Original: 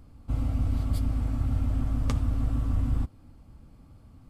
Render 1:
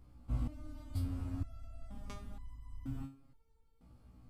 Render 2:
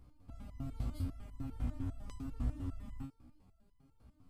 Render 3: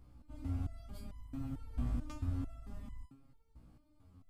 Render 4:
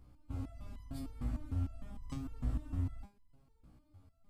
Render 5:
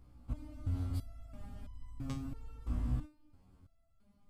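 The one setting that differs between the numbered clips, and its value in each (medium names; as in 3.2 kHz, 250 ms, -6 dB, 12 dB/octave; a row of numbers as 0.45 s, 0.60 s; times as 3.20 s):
resonator arpeggio, rate: 2.1 Hz, 10 Hz, 4.5 Hz, 6.6 Hz, 3 Hz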